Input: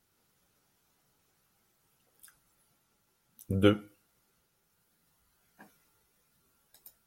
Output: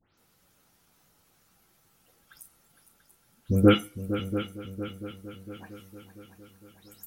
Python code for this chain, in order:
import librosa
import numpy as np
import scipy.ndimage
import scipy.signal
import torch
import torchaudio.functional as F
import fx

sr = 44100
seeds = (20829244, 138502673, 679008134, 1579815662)

p1 = fx.spec_delay(x, sr, highs='late', ms=177)
p2 = p1 + fx.echo_heads(p1, sr, ms=229, heads='second and third', feedback_pct=54, wet_db=-12.5, dry=0)
y = F.gain(torch.from_numpy(p2), 7.0).numpy()